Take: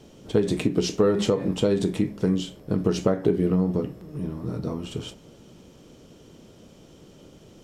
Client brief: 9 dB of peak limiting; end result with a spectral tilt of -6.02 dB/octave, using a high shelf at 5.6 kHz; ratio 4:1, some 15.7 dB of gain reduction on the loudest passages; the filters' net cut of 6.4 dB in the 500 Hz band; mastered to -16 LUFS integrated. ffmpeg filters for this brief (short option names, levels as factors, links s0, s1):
-af "equalizer=f=500:t=o:g=-8,highshelf=f=5600:g=-3.5,acompressor=threshold=0.0112:ratio=4,volume=29.9,alimiter=limit=0.596:level=0:latency=1"